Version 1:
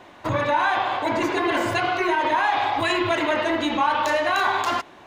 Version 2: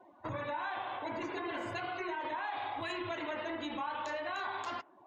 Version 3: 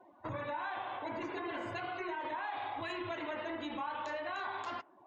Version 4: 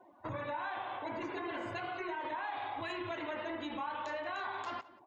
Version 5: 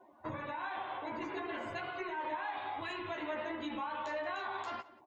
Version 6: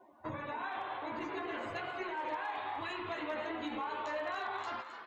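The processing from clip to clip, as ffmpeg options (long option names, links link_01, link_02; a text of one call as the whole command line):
ffmpeg -i in.wav -af "afftdn=noise_reduction=23:noise_floor=-41,acompressor=threshold=-35dB:ratio=2,volume=-7.5dB" out.wav
ffmpeg -i in.wav -af "highshelf=frequency=6600:gain=-9,volume=-1dB" out.wav
ffmpeg -i in.wav -filter_complex "[0:a]asplit=2[link_01][link_02];[link_02]adelay=180.8,volume=-19dB,highshelf=frequency=4000:gain=-4.07[link_03];[link_01][link_03]amix=inputs=2:normalize=0" out.wav
ffmpeg -i in.wav -filter_complex "[0:a]asplit=2[link_01][link_02];[link_02]adelay=13,volume=-4dB[link_03];[link_01][link_03]amix=inputs=2:normalize=0,volume=-1.5dB" out.wav
ffmpeg -i in.wav -filter_complex "[0:a]asplit=8[link_01][link_02][link_03][link_04][link_05][link_06][link_07][link_08];[link_02]adelay=263,afreqshift=130,volume=-10.5dB[link_09];[link_03]adelay=526,afreqshift=260,volume=-15.2dB[link_10];[link_04]adelay=789,afreqshift=390,volume=-20dB[link_11];[link_05]adelay=1052,afreqshift=520,volume=-24.7dB[link_12];[link_06]adelay=1315,afreqshift=650,volume=-29.4dB[link_13];[link_07]adelay=1578,afreqshift=780,volume=-34.2dB[link_14];[link_08]adelay=1841,afreqshift=910,volume=-38.9dB[link_15];[link_01][link_09][link_10][link_11][link_12][link_13][link_14][link_15]amix=inputs=8:normalize=0,volume=29.5dB,asoftclip=hard,volume=-29.5dB" out.wav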